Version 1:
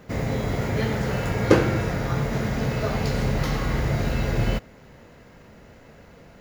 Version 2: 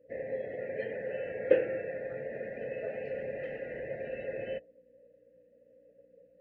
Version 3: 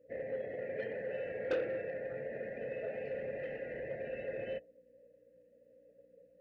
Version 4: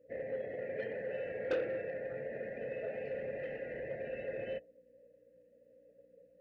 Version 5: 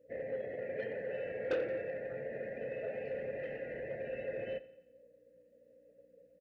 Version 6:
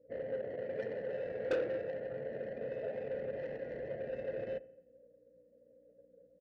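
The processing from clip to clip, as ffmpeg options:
-filter_complex "[0:a]aeval=exprs='val(0)+0.02*(sin(2*PI*60*n/s)+sin(2*PI*2*60*n/s)/2+sin(2*PI*3*60*n/s)/3+sin(2*PI*4*60*n/s)/4+sin(2*PI*5*60*n/s)/5)':c=same,asplit=3[a][b][c];[a]bandpass=f=530:t=q:w=8,volume=0dB[d];[b]bandpass=f=1.84k:t=q:w=8,volume=-6dB[e];[c]bandpass=f=2.48k:t=q:w=8,volume=-9dB[f];[d][e][f]amix=inputs=3:normalize=0,afftdn=nr=21:nf=-49"
-af "asoftclip=type=tanh:threshold=-26dB,volume=-2dB"
-af anull
-af "aecho=1:1:87|174|261|348|435:0.126|0.068|0.0367|0.0198|0.0107"
-af "adynamicsmooth=sensitivity=4:basefreq=1.1k,volume=1dB"

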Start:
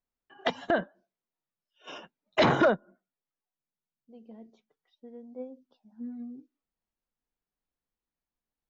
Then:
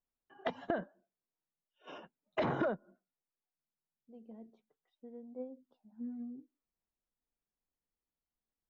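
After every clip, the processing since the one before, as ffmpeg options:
-af "acompressor=threshold=-26dB:ratio=5,lowpass=f=1.3k:p=1,volume=-3dB"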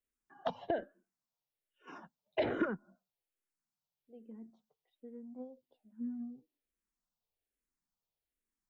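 -filter_complex "[0:a]asplit=2[a][b];[b]afreqshift=-1.2[c];[a][c]amix=inputs=2:normalize=1,volume=2.5dB"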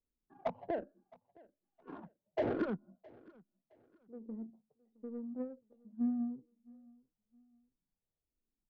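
-af "alimiter=level_in=6dB:limit=-24dB:level=0:latency=1:release=267,volume=-6dB,adynamicsmooth=sensitivity=4:basefreq=500,aecho=1:1:665|1330:0.0631|0.0202,volume=7dB"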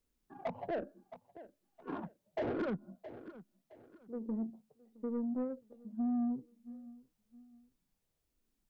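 -af "alimiter=level_in=10.5dB:limit=-24dB:level=0:latency=1:release=93,volume=-10.5dB,asoftclip=type=tanh:threshold=-37.5dB,volume=8.5dB"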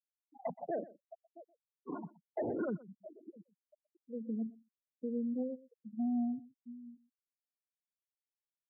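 -af "afftfilt=real='re*gte(hypot(re,im),0.0224)':imag='im*gte(hypot(re,im),0.0224)':win_size=1024:overlap=0.75,highpass=110,aecho=1:1:123:0.106"

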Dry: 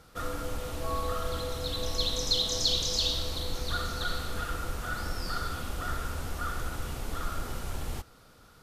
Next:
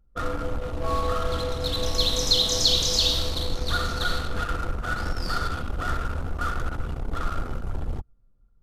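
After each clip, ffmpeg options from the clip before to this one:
-af "anlmdn=1.58,volume=6.5dB"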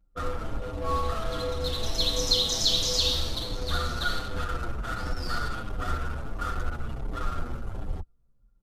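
-filter_complex "[0:a]asplit=2[a][b];[b]adelay=7.4,afreqshift=-1.4[c];[a][c]amix=inputs=2:normalize=1"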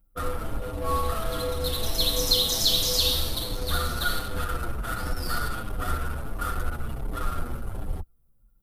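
-af "aexciter=amount=7.1:drive=1.4:freq=9k,volume=1.5dB"

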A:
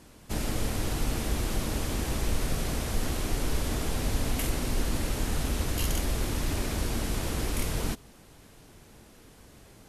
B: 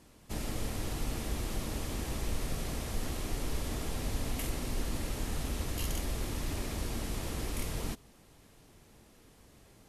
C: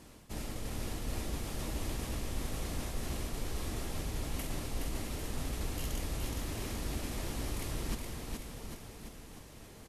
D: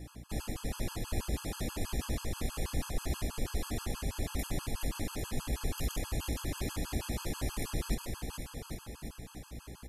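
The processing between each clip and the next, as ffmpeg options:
-af "bandreject=f=1.5k:w=18,volume=-6dB"
-af "areverse,acompressor=threshold=-40dB:ratio=6,areverse,aecho=1:1:420|798|1138|1444|1720:0.631|0.398|0.251|0.158|0.1,volume=4.5dB"
-af "aeval=exprs='val(0)+0.00355*(sin(2*PI*60*n/s)+sin(2*PI*2*60*n/s)/2+sin(2*PI*3*60*n/s)/3+sin(2*PI*4*60*n/s)/4+sin(2*PI*5*60*n/s)/5)':c=same,afftfilt=real='re*gt(sin(2*PI*6.2*pts/sr)*(1-2*mod(floor(b*sr/1024/840),2)),0)':imag='im*gt(sin(2*PI*6.2*pts/sr)*(1-2*mod(floor(b*sr/1024/840),2)),0)':win_size=1024:overlap=0.75,volume=4.5dB"

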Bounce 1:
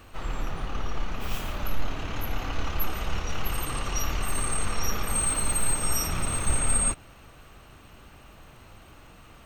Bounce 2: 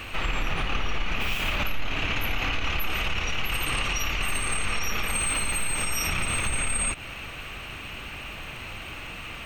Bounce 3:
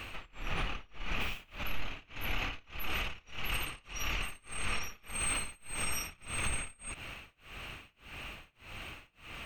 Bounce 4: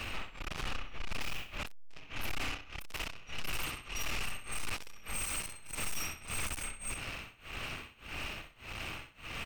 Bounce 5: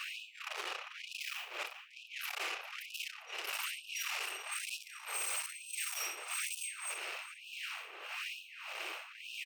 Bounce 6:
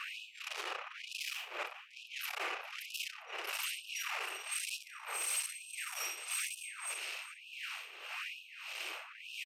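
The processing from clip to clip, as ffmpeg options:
-af "equalizer=f=2.5k:t=o:w=0.99:g=13.5,acompressor=threshold=-26dB:ratio=6,alimiter=level_in=1.5dB:limit=-24dB:level=0:latency=1:release=79,volume=-1.5dB,volume=8.5dB"
-af "tremolo=f=1.7:d=0.98,volume=-6dB"
-filter_complex "[0:a]asplit=2[a][b];[b]aecho=0:1:64|128|192:0.355|0.0958|0.0259[c];[a][c]amix=inputs=2:normalize=0,aeval=exprs='(tanh(126*val(0)+0.6)-tanh(0.6))/126':c=same,volume=7.5dB"
-filter_complex "[0:a]asplit=2[a][b];[b]adelay=38,volume=-13.5dB[c];[a][c]amix=inputs=2:normalize=0,asplit=2[d][e];[e]adelay=399,lowpass=f=1.9k:p=1,volume=-4dB,asplit=2[f][g];[g]adelay=399,lowpass=f=1.9k:p=1,volume=0.37,asplit=2[h][i];[i]adelay=399,lowpass=f=1.9k:p=1,volume=0.37,asplit=2[j][k];[k]adelay=399,lowpass=f=1.9k:p=1,volume=0.37,asplit=2[l][m];[m]adelay=399,lowpass=f=1.9k:p=1,volume=0.37[n];[d][f][h][j][l][n]amix=inputs=6:normalize=0,afftfilt=real='re*gte(b*sr/1024,310*pow(2500/310,0.5+0.5*sin(2*PI*1.1*pts/sr)))':imag='im*gte(b*sr/1024,310*pow(2500/310,0.5+0.5*sin(2*PI*1.1*pts/sr)))':win_size=1024:overlap=0.75"
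-filter_complex "[0:a]acrossover=split=2300[a][b];[a]aeval=exprs='val(0)*(1-0.7/2+0.7/2*cos(2*PI*1.2*n/s))':c=same[c];[b]aeval=exprs='val(0)*(1-0.7/2-0.7/2*cos(2*PI*1.2*n/s))':c=same[d];[c][d]amix=inputs=2:normalize=0,aresample=32000,aresample=44100,volume=3.5dB"

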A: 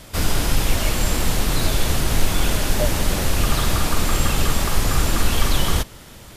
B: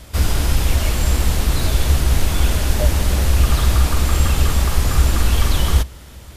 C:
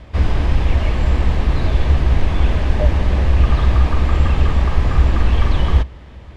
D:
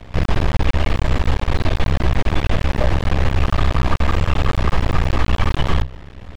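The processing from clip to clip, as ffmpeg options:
-af "equalizer=f=65:w=2.1:g=14,volume=-1dB"
-af "lowpass=2.3k,bandreject=f=1.4k:w=8.9,volume=1.5dB"
-filter_complex "[0:a]acrossover=split=470|560[a][b][c];[a]alimiter=limit=-13.5dB:level=0:latency=1:release=12[d];[d][b][c]amix=inputs=3:normalize=0,aeval=exprs='max(val(0),0)':c=same,volume=5.5dB"

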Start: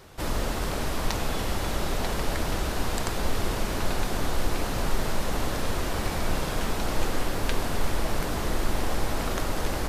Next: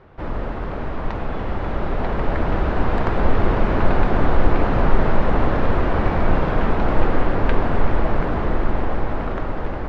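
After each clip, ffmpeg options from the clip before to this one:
-af "dynaudnorm=f=640:g=7:m=11.5dB,lowpass=1.9k,aemphasis=mode=reproduction:type=50fm,volume=2dB"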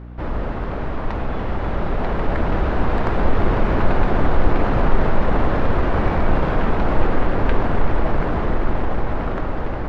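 -filter_complex "[0:a]asplit=2[a][b];[b]volume=20dB,asoftclip=hard,volume=-20dB,volume=-10dB[c];[a][c]amix=inputs=2:normalize=0,aeval=exprs='val(0)+0.0224*(sin(2*PI*60*n/s)+sin(2*PI*2*60*n/s)/2+sin(2*PI*3*60*n/s)/3+sin(2*PI*4*60*n/s)/4+sin(2*PI*5*60*n/s)/5)':c=same,volume=-1dB"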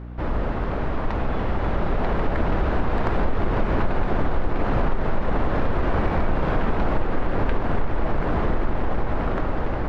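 -af "acompressor=threshold=-16dB:ratio=6"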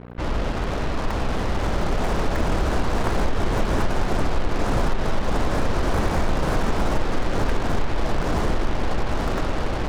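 -af "acrusher=bits=4:mix=0:aa=0.5"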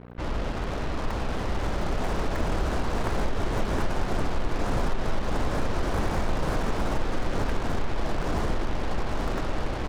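-af "aecho=1:1:714:0.224,volume=-5dB"

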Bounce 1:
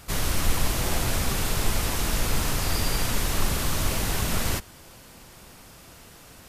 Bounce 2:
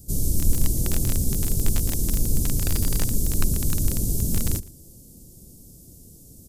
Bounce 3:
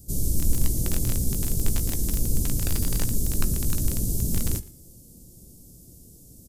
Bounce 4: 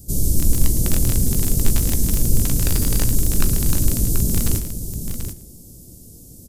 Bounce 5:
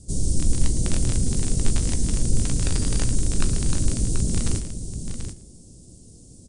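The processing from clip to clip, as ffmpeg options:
-filter_complex "[0:a]acrossover=split=400|6200[a][b][c];[b]acrusher=bits=3:mix=0:aa=0.000001[d];[a][d][c]amix=inputs=3:normalize=0,aecho=1:1:116:0.0891,volume=4dB"
-filter_complex "[0:a]asplit=2[a][b];[b]adelay=17,volume=-13dB[c];[a][c]amix=inputs=2:normalize=0,bandreject=f=425.5:t=h:w=4,bandreject=f=851:t=h:w=4,bandreject=f=1.2765k:t=h:w=4,bandreject=f=1.702k:t=h:w=4,bandreject=f=2.1275k:t=h:w=4,bandreject=f=2.553k:t=h:w=4,bandreject=f=2.9785k:t=h:w=4,bandreject=f=3.404k:t=h:w=4,bandreject=f=3.8295k:t=h:w=4,bandreject=f=4.255k:t=h:w=4,bandreject=f=4.6805k:t=h:w=4,bandreject=f=5.106k:t=h:w=4,bandreject=f=5.5315k:t=h:w=4,bandreject=f=5.957k:t=h:w=4,bandreject=f=6.3825k:t=h:w=4,bandreject=f=6.808k:t=h:w=4,bandreject=f=7.2335k:t=h:w=4,bandreject=f=7.659k:t=h:w=4,bandreject=f=8.0845k:t=h:w=4,bandreject=f=8.51k:t=h:w=4,bandreject=f=8.9355k:t=h:w=4,bandreject=f=9.361k:t=h:w=4,bandreject=f=9.7865k:t=h:w=4,bandreject=f=10.212k:t=h:w=4,bandreject=f=10.6375k:t=h:w=4,bandreject=f=11.063k:t=h:w=4,bandreject=f=11.4885k:t=h:w=4,bandreject=f=11.914k:t=h:w=4,bandreject=f=12.3395k:t=h:w=4,bandreject=f=12.765k:t=h:w=4,bandreject=f=13.1905k:t=h:w=4,bandreject=f=13.616k:t=h:w=4,bandreject=f=14.0415k:t=h:w=4,bandreject=f=14.467k:t=h:w=4,bandreject=f=14.8925k:t=h:w=4,bandreject=f=15.318k:t=h:w=4,bandreject=f=15.7435k:t=h:w=4,bandreject=f=16.169k:t=h:w=4,bandreject=f=16.5945k:t=h:w=4,volume=-2dB"
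-af "aecho=1:1:41|109|734:0.119|0.15|0.376,volume=6dB"
-af "volume=-3dB" -ar 22050 -c:a libmp3lame -b:a 56k

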